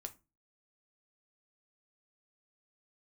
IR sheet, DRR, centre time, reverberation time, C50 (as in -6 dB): 6.0 dB, 5 ms, 0.30 s, 18.0 dB